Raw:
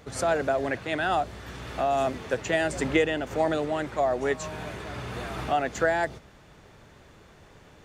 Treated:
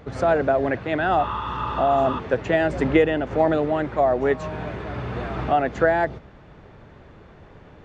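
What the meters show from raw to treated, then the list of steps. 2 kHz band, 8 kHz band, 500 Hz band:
+2.5 dB, below −10 dB, +6.0 dB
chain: head-to-tape spacing loss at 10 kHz 29 dB
healed spectral selection 0:01.21–0:02.17, 840–3,800 Hz before
level +7.5 dB

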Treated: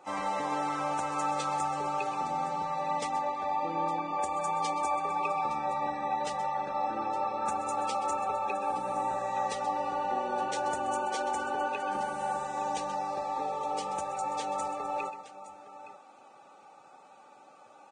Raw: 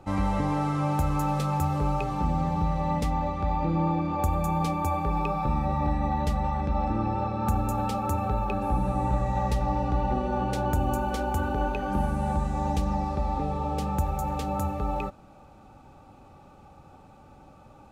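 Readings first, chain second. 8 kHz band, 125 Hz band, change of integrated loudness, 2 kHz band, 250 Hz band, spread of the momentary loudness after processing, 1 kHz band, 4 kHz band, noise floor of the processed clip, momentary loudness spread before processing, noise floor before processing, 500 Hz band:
+2.0 dB, −23.0 dB, −4.0 dB, +0.5 dB, −13.0 dB, 3 LU, 0.0 dB, +1.0 dB, −55 dBFS, 3 LU, −52 dBFS, −2.5 dB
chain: high-pass filter 530 Hz 12 dB per octave
multi-tap delay 129/865 ms −12.5/−15 dB
Ogg Vorbis 16 kbit/s 22,050 Hz

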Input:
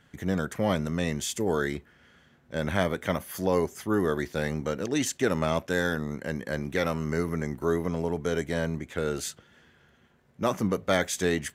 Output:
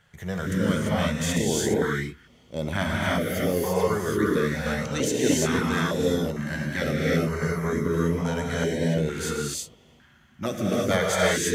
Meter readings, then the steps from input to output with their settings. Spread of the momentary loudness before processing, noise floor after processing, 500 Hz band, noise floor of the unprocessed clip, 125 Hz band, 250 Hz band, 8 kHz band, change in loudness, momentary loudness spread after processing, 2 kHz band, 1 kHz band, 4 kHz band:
6 LU, −56 dBFS, +3.0 dB, −62 dBFS, +5.0 dB, +4.0 dB, +6.0 dB, +3.5 dB, 8 LU, +4.0 dB, +2.5 dB, +5.0 dB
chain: reverb whose tail is shaped and stops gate 370 ms rising, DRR −4.5 dB
notch on a step sequencer 2.2 Hz 280–1,600 Hz

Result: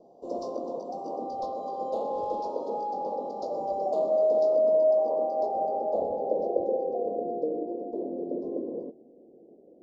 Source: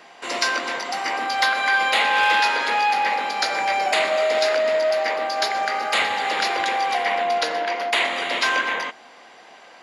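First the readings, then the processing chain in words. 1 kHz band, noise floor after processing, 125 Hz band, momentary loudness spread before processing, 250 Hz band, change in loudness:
−11.5 dB, −55 dBFS, can't be measured, 7 LU, +2.5 dB, −8.0 dB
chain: dynamic equaliser 1,200 Hz, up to +7 dB, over −37 dBFS, Q 1.9
low-pass filter sweep 1,400 Hz → 360 Hz, 0:04.41–0:07.59
elliptic band-stop filter 560–5,600 Hz, stop band 70 dB

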